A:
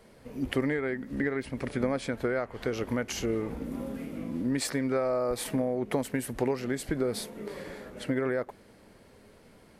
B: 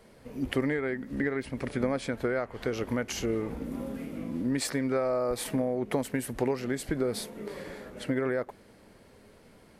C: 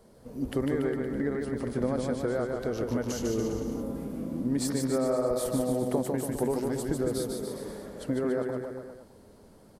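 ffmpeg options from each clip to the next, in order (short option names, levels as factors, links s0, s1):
-af anull
-af "equalizer=f=2300:t=o:w=1.2:g=-13,aecho=1:1:150|285|406.5|515.8|614.3:0.631|0.398|0.251|0.158|0.1"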